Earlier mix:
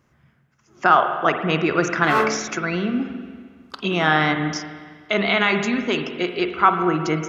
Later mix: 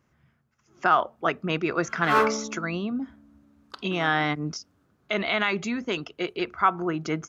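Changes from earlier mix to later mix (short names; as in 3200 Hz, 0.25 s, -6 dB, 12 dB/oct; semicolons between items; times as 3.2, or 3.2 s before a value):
speech -3.0 dB; reverb: off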